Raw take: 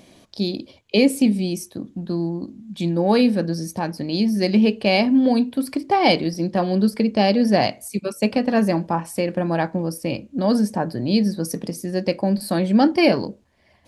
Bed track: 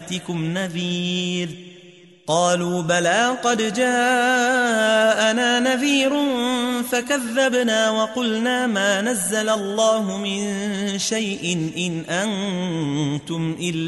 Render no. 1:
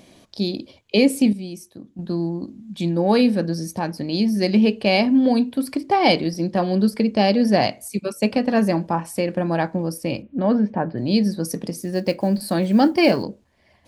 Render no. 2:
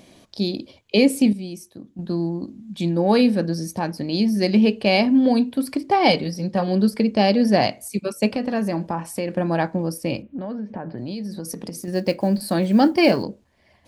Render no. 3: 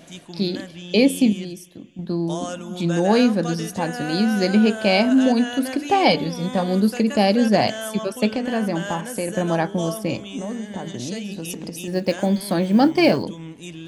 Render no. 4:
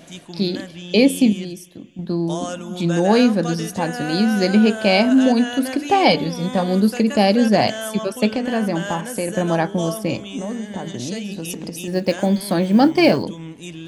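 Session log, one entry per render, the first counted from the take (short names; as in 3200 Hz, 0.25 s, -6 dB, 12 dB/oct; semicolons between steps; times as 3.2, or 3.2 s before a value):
1.33–1.99 gain -8.5 dB; 10.22–10.98 LPF 2900 Hz 24 dB/oct; 11.72–13.23 block floating point 7-bit
6.1–6.68 notch comb 340 Hz; 8.29–9.37 compressor 2.5:1, threshold -21 dBFS; 10.26–11.88 compressor 12:1, threshold -26 dBFS
add bed track -12.5 dB
gain +2 dB; limiter -2 dBFS, peak gain reduction 1 dB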